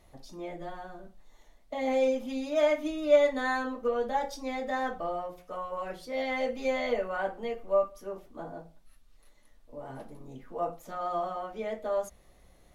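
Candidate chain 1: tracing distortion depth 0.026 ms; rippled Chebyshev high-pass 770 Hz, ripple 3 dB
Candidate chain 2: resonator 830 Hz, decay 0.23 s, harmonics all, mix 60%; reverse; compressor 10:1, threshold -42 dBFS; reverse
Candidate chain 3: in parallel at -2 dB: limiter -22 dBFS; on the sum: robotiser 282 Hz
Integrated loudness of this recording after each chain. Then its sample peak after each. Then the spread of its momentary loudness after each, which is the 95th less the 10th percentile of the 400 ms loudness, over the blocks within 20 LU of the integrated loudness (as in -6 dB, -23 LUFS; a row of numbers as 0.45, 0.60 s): -39.0, -47.5, -28.5 LUFS; -19.5, -34.0, -8.5 dBFS; 18, 8, 17 LU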